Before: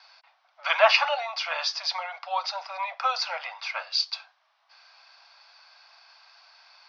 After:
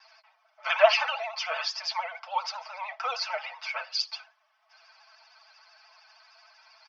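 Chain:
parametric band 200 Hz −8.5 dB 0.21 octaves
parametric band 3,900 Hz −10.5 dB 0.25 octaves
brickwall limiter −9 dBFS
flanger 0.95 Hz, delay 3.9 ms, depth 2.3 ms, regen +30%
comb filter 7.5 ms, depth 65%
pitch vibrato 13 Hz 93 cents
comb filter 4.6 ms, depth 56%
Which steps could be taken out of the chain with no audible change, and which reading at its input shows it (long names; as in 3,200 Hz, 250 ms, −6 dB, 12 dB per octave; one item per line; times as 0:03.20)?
parametric band 200 Hz: nothing at its input below 480 Hz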